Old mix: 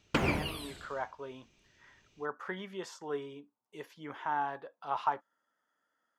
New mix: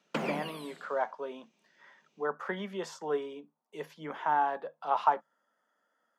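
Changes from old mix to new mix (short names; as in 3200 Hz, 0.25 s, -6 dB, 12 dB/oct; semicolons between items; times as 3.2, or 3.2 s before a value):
speech +8.0 dB; master: add rippled Chebyshev high-pass 150 Hz, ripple 6 dB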